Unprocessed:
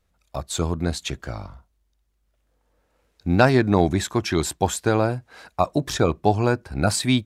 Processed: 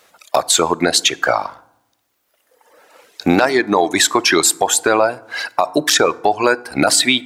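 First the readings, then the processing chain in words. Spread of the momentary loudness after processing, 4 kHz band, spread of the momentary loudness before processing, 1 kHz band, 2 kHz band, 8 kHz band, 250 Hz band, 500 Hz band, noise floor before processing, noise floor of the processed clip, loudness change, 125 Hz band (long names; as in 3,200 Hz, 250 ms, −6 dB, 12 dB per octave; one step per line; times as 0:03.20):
8 LU, +13.5 dB, 15 LU, +8.0 dB, +11.0 dB, +14.5 dB, +3.0 dB, +6.0 dB, −70 dBFS, −66 dBFS, +7.0 dB, −8.5 dB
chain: reverb reduction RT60 1.8 s
high-pass filter 490 Hz 12 dB per octave
downward compressor 5 to 1, threshold −35 dBFS, peak gain reduction 20 dB
feedback delay network reverb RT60 0.85 s, low-frequency decay 1.5×, high-frequency decay 0.55×, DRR 19.5 dB
boost into a limiter +26.5 dB
level −1 dB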